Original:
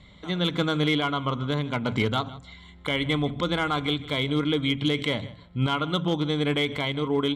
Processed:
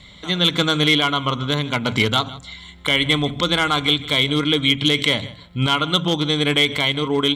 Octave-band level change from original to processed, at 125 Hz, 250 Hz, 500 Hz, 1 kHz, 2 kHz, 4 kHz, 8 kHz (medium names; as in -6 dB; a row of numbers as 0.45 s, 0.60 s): +4.0 dB, +4.0 dB, +4.5 dB, +6.5 dB, +9.5 dB, +12.0 dB, +14.5 dB